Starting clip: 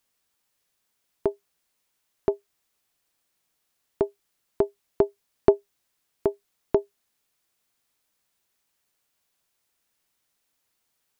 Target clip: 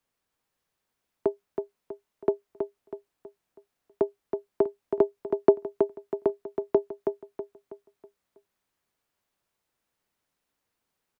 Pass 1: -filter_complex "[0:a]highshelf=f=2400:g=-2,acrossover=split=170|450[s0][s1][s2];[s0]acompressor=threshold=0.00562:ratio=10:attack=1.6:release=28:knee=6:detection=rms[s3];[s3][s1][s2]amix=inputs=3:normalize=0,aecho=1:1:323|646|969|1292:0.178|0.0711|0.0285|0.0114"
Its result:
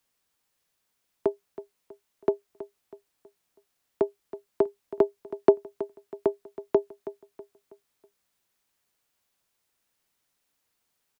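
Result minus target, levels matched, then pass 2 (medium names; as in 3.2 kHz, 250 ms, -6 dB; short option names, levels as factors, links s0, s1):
echo-to-direct -8 dB; 4 kHz band +4.0 dB
-filter_complex "[0:a]highshelf=f=2400:g=-10.5,acrossover=split=170|450[s0][s1][s2];[s0]acompressor=threshold=0.00562:ratio=10:attack=1.6:release=28:knee=6:detection=rms[s3];[s3][s1][s2]amix=inputs=3:normalize=0,aecho=1:1:323|646|969|1292|1615:0.501|0.2|0.0802|0.0321|0.0128"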